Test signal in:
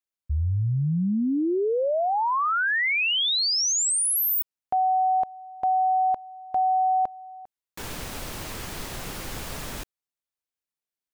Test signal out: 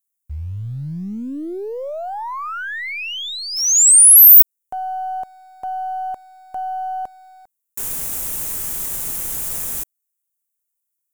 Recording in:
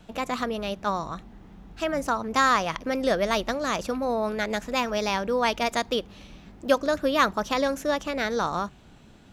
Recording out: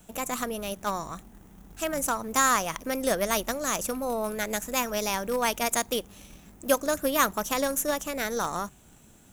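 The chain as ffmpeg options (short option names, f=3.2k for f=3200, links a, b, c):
-filter_complex "[0:a]aexciter=amount=9.6:drive=3.3:freq=6.5k,asplit=2[a][b];[b]acrusher=bits=4:dc=4:mix=0:aa=0.000001,volume=-11.5dB[c];[a][c]amix=inputs=2:normalize=0,volume=-4.5dB"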